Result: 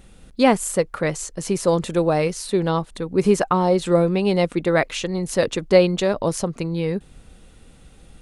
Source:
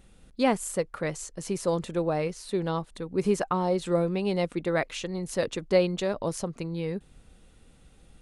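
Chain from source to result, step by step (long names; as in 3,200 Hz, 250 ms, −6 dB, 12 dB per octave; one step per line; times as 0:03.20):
0:01.85–0:02.47: high-shelf EQ 4,700 Hz +6.5 dB
level +8 dB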